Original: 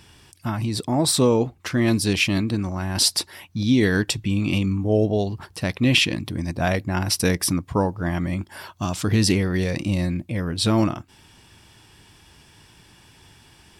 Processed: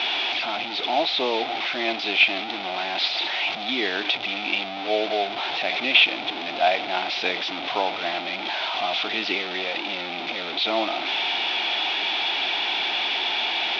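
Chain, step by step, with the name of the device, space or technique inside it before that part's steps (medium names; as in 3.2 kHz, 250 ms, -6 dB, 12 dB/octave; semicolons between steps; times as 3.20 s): digital answering machine (band-pass 310–3100 Hz; one-bit delta coder 32 kbps, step -23 dBFS; cabinet simulation 450–4300 Hz, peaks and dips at 490 Hz -7 dB, 730 Hz +9 dB, 1.1 kHz -6 dB, 1.7 kHz -6 dB, 2.4 kHz +7 dB, 3.5 kHz +10 dB); trim +1 dB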